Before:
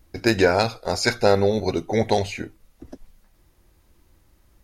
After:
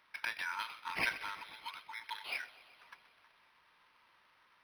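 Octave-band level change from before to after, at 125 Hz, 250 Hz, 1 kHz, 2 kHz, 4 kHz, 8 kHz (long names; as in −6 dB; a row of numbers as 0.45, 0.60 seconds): −35.0, −34.0, −16.5, −10.0, −15.0, −21.5 decibels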